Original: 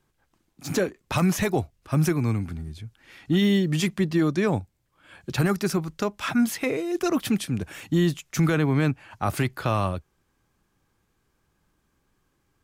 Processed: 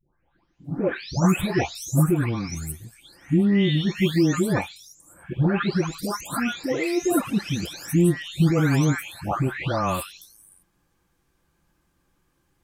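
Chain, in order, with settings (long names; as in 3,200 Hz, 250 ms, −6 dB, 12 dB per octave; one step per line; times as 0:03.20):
every frequency bin delayed by itself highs late, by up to 645 ms
level +3 dB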